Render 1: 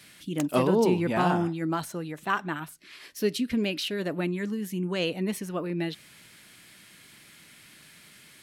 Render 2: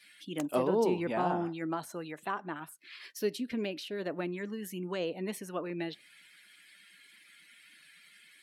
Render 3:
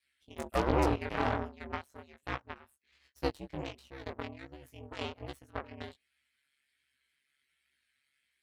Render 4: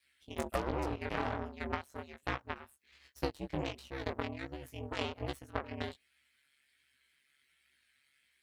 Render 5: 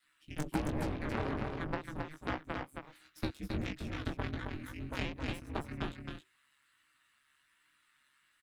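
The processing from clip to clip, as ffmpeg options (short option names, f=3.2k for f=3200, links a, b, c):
-filter_complex "[0:a]highpass=f=550:p=1,afftdn=nr=15:nf=-54,acrossover=split=910[a][b];[b]acompressor=threshold=-42dB:ratio=6[c];[a][c]amix=inputs=2:normalize=0"
-af "aeval=exprs='0.158*(cos(1*acos(clip(val(0)/0.158,-1,1)))-cos(1*PI/2))+0.0355*(cos(2*acos(clip(val(0)/0.158,-1,1)))-cos(2*PI/2))+0.0282*(cos(6*acos(clip(val(0)/0.158,-1,1)))-cos(6*PI/2))+0.02*(cos(7*acos(clip(val(0)/0.158,-1,1)))-cos(7*PI/2))+0.0126*(cos(8*acos(clip(val(0)/0.158,-1,1)))-cos(8*PI/2))':c=same,aeval=exprs='val(0)*sin(2*PI*70*n/s)':c=same,flanger=delay=16:depth=4.8:speed=1.3,volume=4dB"
-af "acompressor=threshold=-35dB:ratio=16,volume=5.5dB"
-af "afreqshift=-380,aecho=1:1:269:0.596"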